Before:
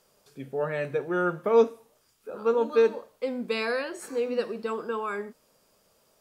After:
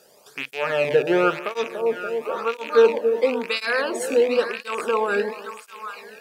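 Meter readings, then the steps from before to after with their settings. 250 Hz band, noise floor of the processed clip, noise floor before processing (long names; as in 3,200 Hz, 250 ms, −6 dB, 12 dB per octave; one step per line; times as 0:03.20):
+4.0 dB, −54 dBFS, −67 dBFS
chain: loose part that buzzes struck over −42 dBFS, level −28 dBFS
in parallel at −3 dB: downward compressor, threshold −32 dBFS, peak gain reduction 16 dB
on the sum: echo with a time of its own for lows and highs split 890 Hz, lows 287 ms, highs 790 ms, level −11 dB
through-zero flanger with one copy inverted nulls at 0.97 Hz, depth 1 ms
level +8.5 dB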